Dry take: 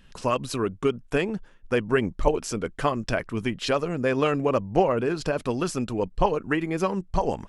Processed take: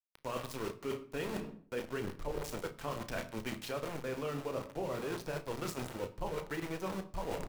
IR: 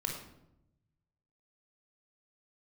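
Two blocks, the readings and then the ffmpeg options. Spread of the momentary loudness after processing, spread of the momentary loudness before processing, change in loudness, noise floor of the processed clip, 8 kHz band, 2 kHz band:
3 LU, 5 LU, −14.0 dB, −60 dBFS, −10.0 dB, −12.5 dB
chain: -filter_complex "[0:a]flanger=delay=5.9:depth=8.3:regen=-60:speed=1.5:shape=sinusoidal,bandreject=frequency=60:width_type=h:width=6,bandreject=frequency=120:width_type=h:width=6,bandreject=frequency=180:width_type=h:width=6,bandreject=frequency=240:width_type=h:width=6,bandreject=frequency=300:width_type=h:width=6,bandreject=frequency=360:width_type=h:width=6,bandreject=frequency=420:width_type=h:width=6,aecho=1:1:145|290:0.112|0.0281,aeval=exprs='val(0)*gte(abs(val(0)),0.0266)':channel_layout=same,asplit=2[link_01][link_02];[1:a]atrim=start_sample=2205[link_03];[link_02][link_03]afir=irnorm=-1:irlink=0,volume=-11dB[link_04];[link_01][link_04]amix=inputs=2:normalize=0,acrossover=split=450[link_05][link_06];[link_06]acompressor=threshold=-26dB:ratio=6[link_07];[link_05][link_07]amix=inputs=2:normalize=0,asplit=2[link_08][link_09];[link_09]adelay=33,volume=-11dB[link_10];[link_08][link_10]amix=inputs=2:normalize=0,areverse,acompressor=threshold=-38dB:ratio=6,areverse,volume=2dB"

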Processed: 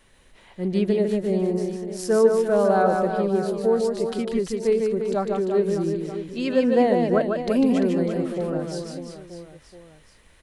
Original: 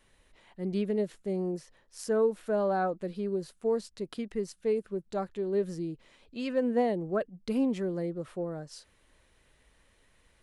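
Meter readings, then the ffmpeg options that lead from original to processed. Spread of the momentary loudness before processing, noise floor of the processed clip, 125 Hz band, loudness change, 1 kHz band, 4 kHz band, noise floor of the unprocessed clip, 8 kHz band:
12 LU, −55 dBFS, +9.5 dB, +9.5 dB, +9.5 dB, +9.5 dB, −67 dBFS, +9.5 dB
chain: -af "aecho=1:1:150|345|598.5|928|1356:0.631|0.398|0.251|0.158|0.1,volume=7.5dB"

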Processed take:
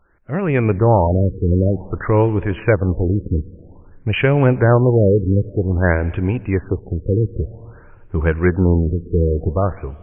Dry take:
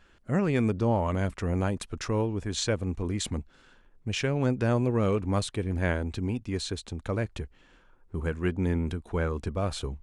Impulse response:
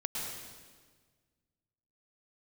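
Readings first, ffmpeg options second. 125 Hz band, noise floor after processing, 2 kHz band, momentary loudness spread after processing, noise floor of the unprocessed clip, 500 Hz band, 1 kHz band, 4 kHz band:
+13.0 dB, −44 dBFS, +11.0 dB, 10 LU, −60 dBFS, +12.5 dB, +11.0 dB, −1.0 dB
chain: -filter_complex "[0:a]equalizer=frequency=230:width=4.8:gain=-9.5,dynaudnorm=framelen=140:gausssize=7:maxgain=13dB,asuperstop=centerf=5200:order=8:qfactor=0.83,asplit=2[link_01][link_02];[1:a]atrim=start_sample=2205[link_03];[link_02][link_03]afir=irnorm=-1:irlink=0,volume=-21.5dB[link_04];[link_01][link_04]amix=inputs=2:normalize=0,afftfilt=real='re*lt(b*sr/1024,500*pow(3700/500,0.5+0.5*sin(2*PI*0.52*pts/sr)))':imag='im*lt(b*sr/1024,500*pow(3700/500,0.5+0.5*sin(2*PI*0.52*pts/sr)))':win_size=1024:overlap=0.75,volume=1dB"

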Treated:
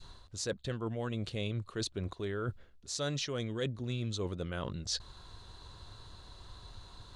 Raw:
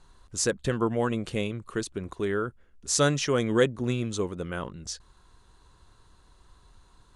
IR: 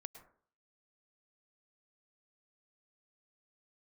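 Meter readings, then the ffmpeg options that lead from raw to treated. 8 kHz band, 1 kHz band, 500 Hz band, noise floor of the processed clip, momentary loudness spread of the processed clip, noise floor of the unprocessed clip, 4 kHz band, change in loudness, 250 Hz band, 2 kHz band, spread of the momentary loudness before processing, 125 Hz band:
−11.0 dB, −11.5 dB, −11.0 dB, −58 dBFS, 17 LU, −59 dBFS, −4.0 dB, −9.0 dB, −10.0 dB, −10.5 dB, 13 LU, −5.0 dB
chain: -af "adynamicequalizer=threshold=0.01:dfrequency=760:dqfactor=0.79:tfrequency=760:tqfactor=0.79:attack=5:release=100:ratio=0.375:range=3:mode=cutabove:tftype=bell,areverse,acompressor=threshold=-41dB:ratio=5,areverse,equalizer=frequency=100:width_type=o:width=0.67:gain=8,equalizer=frequency=630:width_type=o:width=0.67:gain=5,equalizer=frequency=4000:width_type=o:width=0.67:gain=10,equalizer=frequency=10000:width_type=o:width=0.67:gain=-5,volume=4dB"

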